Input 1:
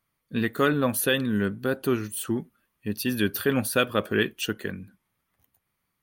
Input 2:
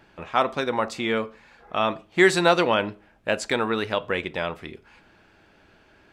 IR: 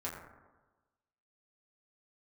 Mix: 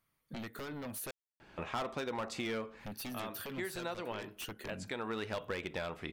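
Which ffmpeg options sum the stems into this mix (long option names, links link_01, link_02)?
-filter_complex "[0:a]acompressor=threshold=-31dB:ratio=16,aeval=exprs='0.1*sin(PI/2*3.98*val(0)/0.1)':channel_layout=same,volume=-18.5dB,asplit=3[link_01][link_02][link_03];[link_01]atrim=end=1.11,asetpts=PTS-STARTPTS,afade=type=out:start_time=1.106:duration=0.004:curve=hsin[link_04];[link_02]atrim=start=1.11:end=2.79,asetpts=PTS-STARTPTS,volume=0[link_05];[link_03]atrim=start=2.79,asetpts=PTS-STARTPTS,afade=type=in:duration=0.004:curve=hsin[link_06];[link_04][link_05][link_06]concat=n=3:v=0:a=1,asplit=2[link_07][link_08];[1:a]adelay=1400,volume=-1dB[link_09];[link_08]apad=whole_len=331914[link_10];[link_09][link_10]sidechaincompress=threshold=-58dB:ratio=8:attack=6.1:release=345[link_11];[link_07][link_11]amix=inputs=2:normalize=0,volume=21.5dB,asoftclip=hard,volume=-21.5dB,acompressor=threshold=-36dB:ratio=5"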